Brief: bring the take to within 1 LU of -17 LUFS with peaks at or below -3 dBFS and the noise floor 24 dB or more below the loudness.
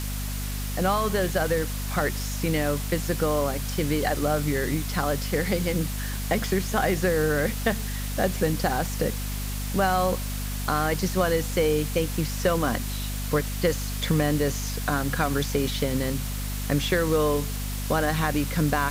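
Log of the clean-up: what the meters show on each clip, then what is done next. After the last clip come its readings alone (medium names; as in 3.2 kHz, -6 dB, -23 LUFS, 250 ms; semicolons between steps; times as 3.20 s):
hum 50 Hz; highest harmonic 250 Hz; hum level -28 dBFS; noise floor -30 dBFS; noise floor target -50 dBFS; loudness -26.0 LUFS; peak level -10.0 dBFS; loudness target -17.0 LUFS
-> de-hum 50 Hz, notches 5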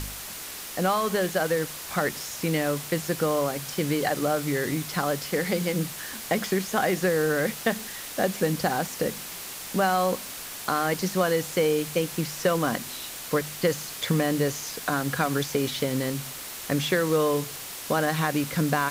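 hum not found; noise floor -38 dBFS; noise floor target -51 dBFS
-> noise print and reduce 13 dB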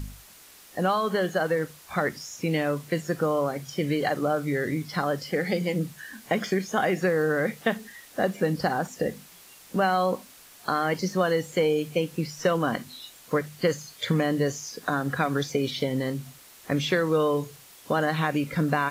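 noise floor -51 dBFS; loudness -27.0 LUFS; peak level -11.5 dBFS; loudness target -17.0 LUFS
-> trim +10 dB; peak limiter -3 dBFS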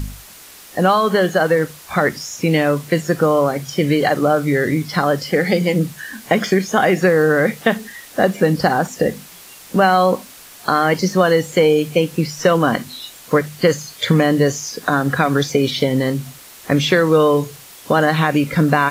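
loudness -17.0 LUFS; peak level -3.0 dBFS; noise floor -41 dBFS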